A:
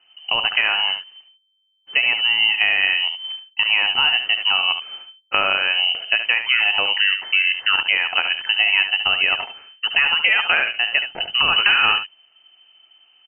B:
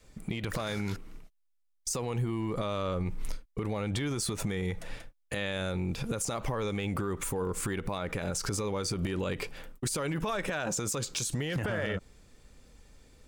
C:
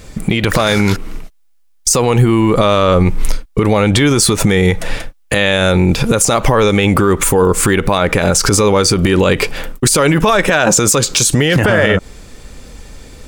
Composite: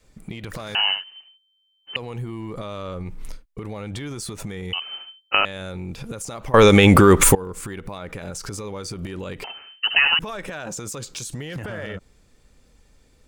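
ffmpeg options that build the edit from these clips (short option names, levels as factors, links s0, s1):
-filter_complex "[0:a]asplit=3[s0][s1][s2];[1:a]asplit=5[s3][s4][s5][s6][s7];[s3]atrim=end=0.752[s8];[s0]atrim=start=0.748:end=1.962[s9];[s4]atrim=start=1.958:end=4.732[s10];[s1]atrim=start=4.728:end=5.452[s11];[s5]atrim=start=5.448:end=6.542[s12];[2:a]atrim=start=6.538:end=7.352[s13];[s6]atrim=start=7.348:end=9.442[s14];[s2]atrim=start=9.438:end=10.192[s15];[s7]atrim=start=10.188[s16];[s8][s9]acrossfade=d=0.004:c1=hsin:c2=hsin[s17];[s17][s10]acrossfade=d=0.004:c1=hsin:c2=hsin[s18];[s18][s11]acrossfade=d=0.004:c1=hsin:c2=hsin[s19];[s19][s12]acrossfade=d=0.004:c1=hsin:c2=hsin[s20];[s20][s13]acrossfade=d=0.004:c1=hsin:c2=hsin[s21];[s21][s14]acrossfade=d=0.004:c1=hsin:c2=hsin[s22];[s22][s15]acrossfade=d=0.004:c1=hsin:c2=hsin[s23];[s23][s16]acrossfade=d=0.004:c1=hsin:c2=hsin"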